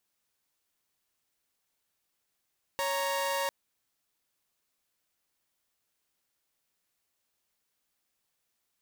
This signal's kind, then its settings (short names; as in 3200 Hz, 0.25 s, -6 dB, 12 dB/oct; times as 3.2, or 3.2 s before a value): chord C#5/A#5 saw, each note -29 dBFS 0.70 s